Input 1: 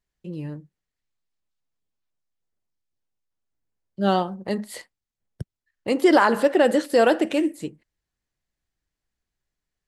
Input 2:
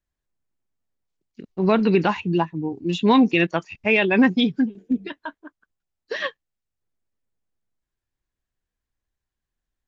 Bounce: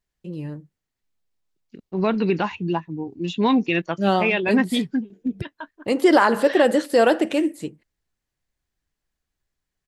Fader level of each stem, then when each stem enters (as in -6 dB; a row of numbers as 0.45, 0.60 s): +1.0, -3.0 dB; 0.00, 0.35 s